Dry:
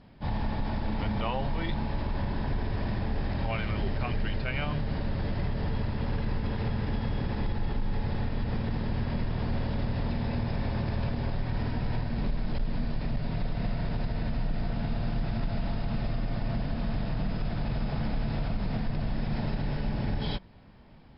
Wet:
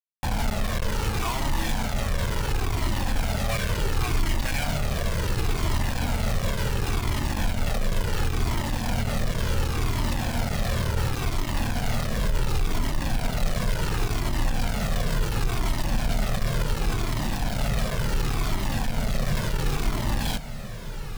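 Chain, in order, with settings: 9.39–10.19 bell 680 Hz -11 dB 0.28 oct; bit-crush 5-bit; diffused feedback echo 1.352 s, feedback 67%, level -12 dB; cascading flanger falling 0.7 Hz; gain +5.5 dB

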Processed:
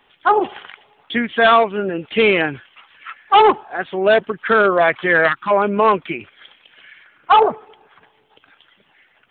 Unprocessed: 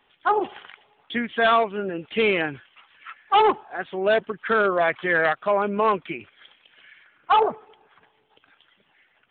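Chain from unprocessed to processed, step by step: spectral gain 5.28–5.51, 370–800 Hz -21 dB; gain +6.5 dB

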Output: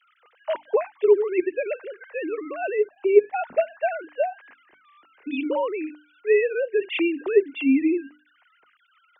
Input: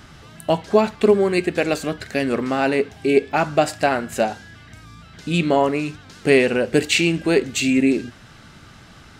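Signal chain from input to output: sine-wave speech; notches 50/100/150/200/250/300 Hz; gain -4 dB

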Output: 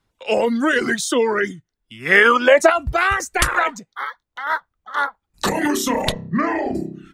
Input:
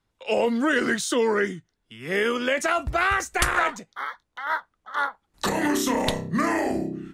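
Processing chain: 6.12–6.75 air absorption 210 m; reverb removal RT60 0.87 s; 2.05–2.69 bell 2000 Hz -> 520 Hz +12 dB 1.8 oct; gain +5 dB

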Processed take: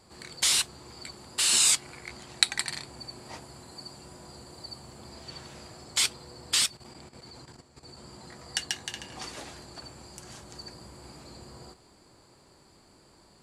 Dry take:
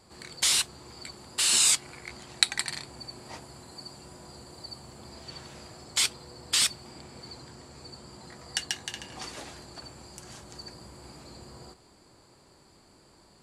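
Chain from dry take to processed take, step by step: 6.6–7.97 level quantiser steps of 12 dB

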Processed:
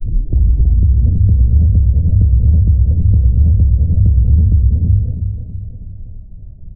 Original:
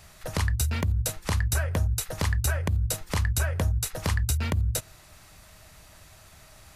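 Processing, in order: tape start at the beginning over 0.53 s; tilt -4.5 dB/oct; non-linear reverb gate 0.38 s rising, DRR -1 dB; limiter -5.5 dBFS, peak gain reduction 10 dB; Gaussian blur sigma 20 samples; on a send: feedback echo 0.325 s, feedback 52%, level -8 dB; on the sum: ending taper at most 140 dB/s; gain +1 dB

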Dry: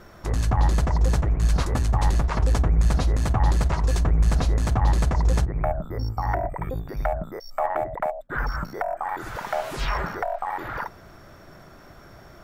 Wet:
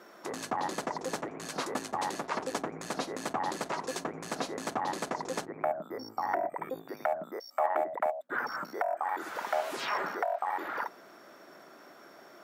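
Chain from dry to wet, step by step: HPF 250 Hz 24 dB/oct; gain -3.5 dB

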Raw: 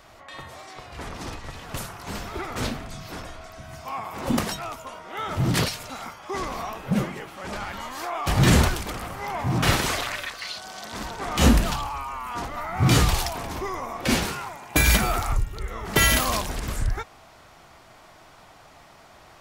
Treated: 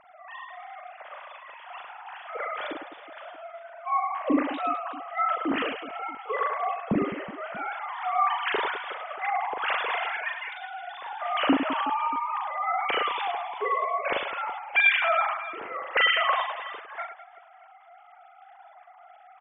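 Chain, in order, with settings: sine-wave speech; reverse bouncing-ball echo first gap 40 ms, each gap 1.6×, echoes 5; mismatched tape noise reduction decoder only; gain -5.5 dB

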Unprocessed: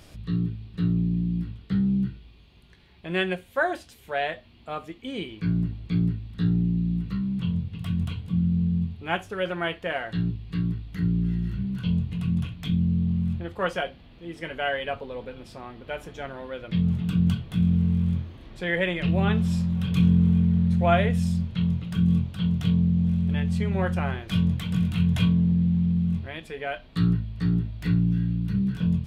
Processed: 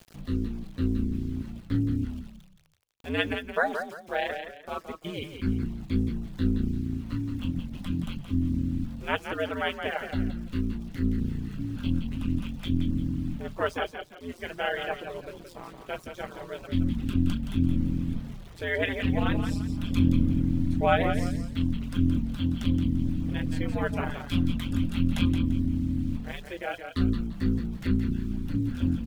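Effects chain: ring modulator 86 Hz; sample gate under -47 dBFS; reverb removal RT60 0.92 s; frequency-shifting echo 0.171 s, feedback 30%, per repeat -31 Hz, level -7.5 dB; gain +1.5 dB

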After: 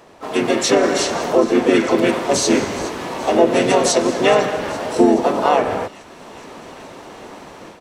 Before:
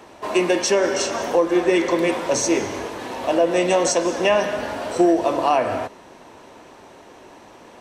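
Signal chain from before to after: thin delay 0.42 s, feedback 61%, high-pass 2400 Hz, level -17 dB; AGC gain up to 10 dB; harmoniser -7 st -6 dB, -5 st -5 dB, +4 st -6 dB; gain -4.5 dB

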